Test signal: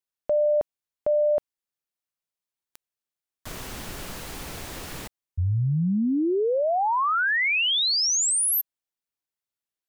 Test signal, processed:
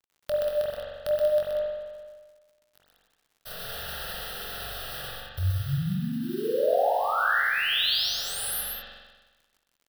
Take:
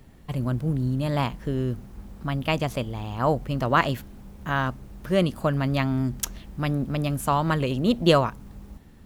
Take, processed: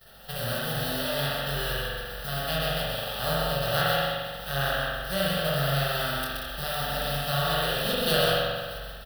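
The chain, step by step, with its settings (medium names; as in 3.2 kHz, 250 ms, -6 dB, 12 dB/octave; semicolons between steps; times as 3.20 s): formants flattened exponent 0.3; static phaser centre 1.5 kHz, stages 8; chorus 0.69 Hz, delay 20 ms, depth 7.4 ms; gate with hold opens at -46 dBFS, range -11 dB; spring tank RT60 1.2 s, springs 43 ms, chirp 35 ms, DRR -4.5 dB; in parallel at +2.5 dB: compression, threshold -36 dBFS; on the sum: crackle 73 per s -45 dBFS; loudspeakers at several distances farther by 43 m -4 dB, 64 m -7 dB; trim -5.5 dB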